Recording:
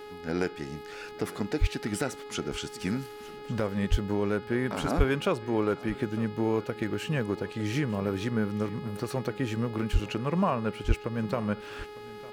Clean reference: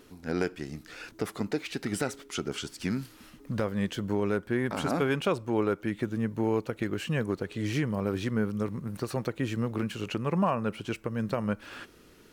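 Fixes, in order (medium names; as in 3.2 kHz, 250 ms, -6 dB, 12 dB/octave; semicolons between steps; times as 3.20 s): de-hum 419 Hz, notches 12; de-plosive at 1.60/3.90/4.97/9.92/10.87 s; inverse comb 905 ms -19 dB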